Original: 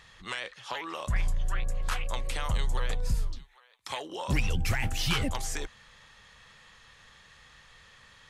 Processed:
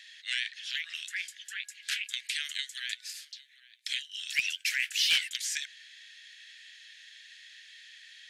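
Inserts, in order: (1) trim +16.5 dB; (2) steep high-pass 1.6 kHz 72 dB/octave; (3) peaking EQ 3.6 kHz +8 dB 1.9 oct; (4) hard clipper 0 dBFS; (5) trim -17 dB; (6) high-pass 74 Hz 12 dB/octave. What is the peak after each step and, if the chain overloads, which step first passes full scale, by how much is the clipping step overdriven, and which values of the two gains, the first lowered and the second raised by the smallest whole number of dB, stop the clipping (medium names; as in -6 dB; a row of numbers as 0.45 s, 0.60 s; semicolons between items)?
-1.5 dBFS, -2.0 dBFS, +5.0 dBFS, 0.0 dBFS, -17.0 dBFS, -16.5 dBFS; step 3, 5.0 dB; step 1 +11.5 dB, step 5 -12 dB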